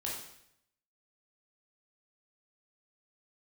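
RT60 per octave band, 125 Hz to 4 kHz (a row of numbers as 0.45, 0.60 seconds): 0.90, 0.80, 0.75, 0.70, 0.75, 0.70 seconds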